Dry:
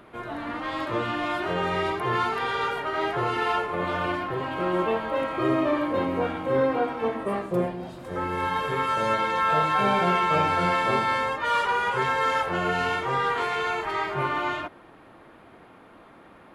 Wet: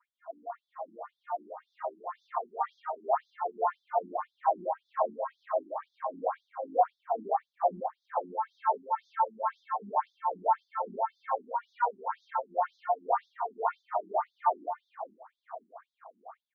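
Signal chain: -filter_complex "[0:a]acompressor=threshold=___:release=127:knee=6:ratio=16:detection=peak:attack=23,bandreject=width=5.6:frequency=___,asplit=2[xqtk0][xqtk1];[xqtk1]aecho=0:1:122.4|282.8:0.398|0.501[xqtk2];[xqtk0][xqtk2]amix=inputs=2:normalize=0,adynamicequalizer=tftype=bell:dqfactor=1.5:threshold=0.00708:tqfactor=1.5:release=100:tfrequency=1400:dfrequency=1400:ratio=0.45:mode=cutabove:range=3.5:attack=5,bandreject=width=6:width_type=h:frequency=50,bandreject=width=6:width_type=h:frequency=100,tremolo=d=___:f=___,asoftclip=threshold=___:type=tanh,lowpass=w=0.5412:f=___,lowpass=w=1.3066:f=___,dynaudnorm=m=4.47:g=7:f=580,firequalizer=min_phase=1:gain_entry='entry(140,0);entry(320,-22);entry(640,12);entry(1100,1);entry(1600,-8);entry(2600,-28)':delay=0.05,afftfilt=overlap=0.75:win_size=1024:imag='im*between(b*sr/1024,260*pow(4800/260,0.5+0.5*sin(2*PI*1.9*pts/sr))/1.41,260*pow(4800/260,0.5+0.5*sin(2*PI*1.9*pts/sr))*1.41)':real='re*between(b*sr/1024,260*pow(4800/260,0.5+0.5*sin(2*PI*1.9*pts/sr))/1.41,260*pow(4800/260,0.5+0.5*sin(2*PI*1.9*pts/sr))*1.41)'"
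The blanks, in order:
0.0355, 590, 0.71, 2.2, 0.0224, 10000, 10000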